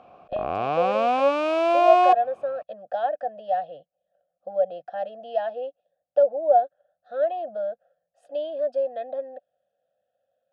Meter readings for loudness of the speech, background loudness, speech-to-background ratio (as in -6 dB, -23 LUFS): -26.5 LUFS, -22.0 LUFS, -4.5 dB